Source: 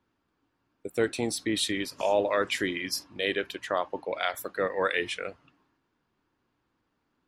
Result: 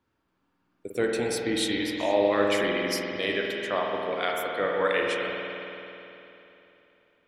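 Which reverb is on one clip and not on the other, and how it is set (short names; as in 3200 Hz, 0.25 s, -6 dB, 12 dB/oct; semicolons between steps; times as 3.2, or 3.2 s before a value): spring tank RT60 3.2 s, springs 49 ms, chirp 80 ms, DRR -1 dB; gain -1 dB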